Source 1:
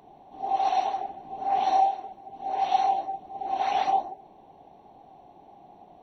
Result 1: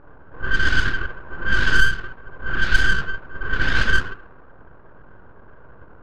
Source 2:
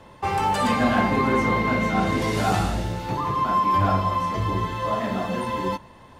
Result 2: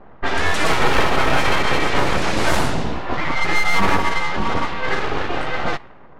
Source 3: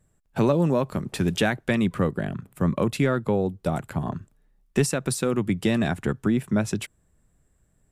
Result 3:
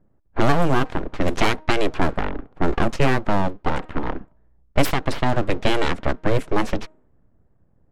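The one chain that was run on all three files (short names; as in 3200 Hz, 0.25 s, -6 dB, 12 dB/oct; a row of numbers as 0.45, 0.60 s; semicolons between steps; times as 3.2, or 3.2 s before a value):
de-hum 312.9 Hz, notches 4; full-wave rectifier; low-pass opened by the level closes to 1000 Hz, open at -17 dBFS; normalise peaks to -2 dBFS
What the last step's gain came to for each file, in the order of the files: +10.0, +7.0, +6.5 dB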